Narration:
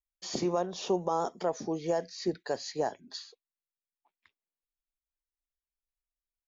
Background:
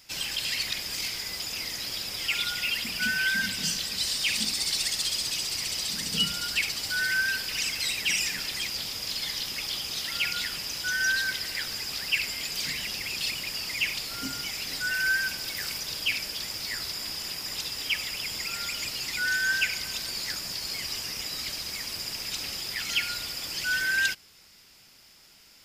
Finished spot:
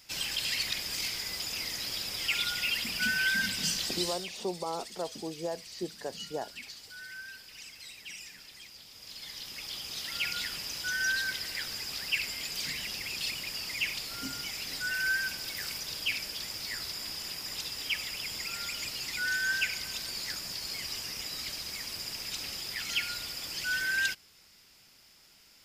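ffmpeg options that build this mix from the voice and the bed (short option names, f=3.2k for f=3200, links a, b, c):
-filter_complex "[0:a]adelay=3550,volume=-5.5dB[a];[1:a]volume=12dB,afade=t=out:st=3.92:d=0.37:silence=0.158489,afade=t=in:st=8.88:d=1.43:silence=0.199526[b];[a][b]amix=inputs=2:normalize=0"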